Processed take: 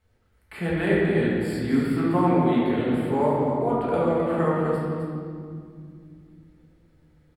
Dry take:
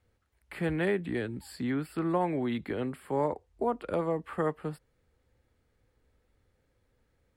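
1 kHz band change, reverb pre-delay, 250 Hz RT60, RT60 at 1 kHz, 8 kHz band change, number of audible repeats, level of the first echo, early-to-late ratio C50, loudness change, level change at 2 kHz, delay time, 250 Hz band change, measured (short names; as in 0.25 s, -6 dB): +8.0 dB, 5 ms, 3.9 s, 2.0 s, n/a, 1, -7.0 dB, -2.0 dB, +8.5 dB, +7.5 dB, 0.26 s, +10.0 dB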